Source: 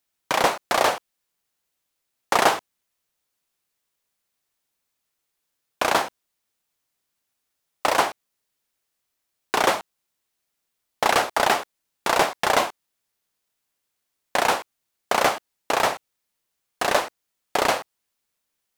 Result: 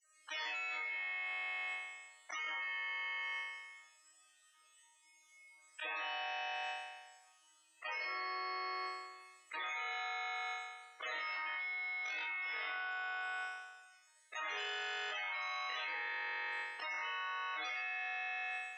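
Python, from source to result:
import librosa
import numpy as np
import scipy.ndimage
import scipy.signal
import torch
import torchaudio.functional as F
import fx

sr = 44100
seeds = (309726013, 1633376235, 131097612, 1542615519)

p1 = fx.spec_clip(x, sr, under_db=18)
p2 = fx.level_steps(p1, sr, step_db=17)
p3 = 10.0 ** (-13.5 / 20.0) * (np.abs((p2 / 10.0 ** (-13.5 / 20.0) + 3.0) % 4.0 - 2.0) - 1.0)
p4 = fx.resonator_bank(p3, sr, root=44, chord='minor', decay_s=0.62)
p5 = fx.spec_topn(p4, sr, count=16)
p6 = fx.cabinet(p5, sr, low_hz=480.0, low_slope=24, high_hz=8900.0, hz=(590.0, 2100.0, 4300.0, 8000.0), db=(-6, 5, -5, 7))
p7 = fx.auto_swell(p6, sr, attack_ms=120.0)
p8 = p7 + fx.room_flutter(p7, sr, wall_m=3.7, rt60_s=1.3, dry=0)
p9 = fx.dynamic_eq(p8, sr, hz=2100.0, q=4.2, threshold_db=-60.0, ratio=4.0, max_db=4)
p10 = fx.env_flatten(p9, sr, amount_pct=100)
y = F.gain(torch.from_numpy(p10), 1.5).numpy()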